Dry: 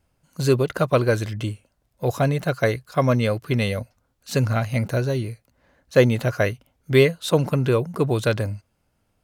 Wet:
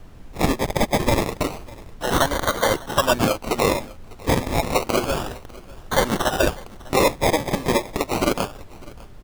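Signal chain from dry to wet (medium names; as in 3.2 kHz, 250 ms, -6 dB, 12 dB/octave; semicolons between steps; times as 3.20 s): high-pass 630 Hz 6 dB/octave; gate with hold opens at -52 dBFS; tilt EQ +4.5 dB/octave; comb 3.4 ms, depth 56%; peak limiter -12.5 dBFS, peak gain reduction 9.5 dB; decimation with a swept rate 24×, swing 60% 0.3 Hz; added noise brown -46 dBFS; delay 600 ms -22 dB; trim +6.5 dB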